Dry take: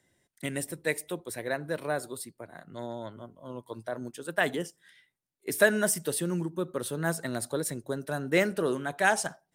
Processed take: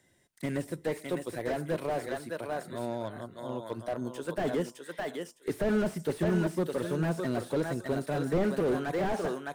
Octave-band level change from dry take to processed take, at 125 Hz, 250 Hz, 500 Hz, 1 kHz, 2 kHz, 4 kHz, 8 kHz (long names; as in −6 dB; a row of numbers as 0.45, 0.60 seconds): +2.5, +2.5, 0.0, −2.0, −9.0, −6.0, −14.0 decibels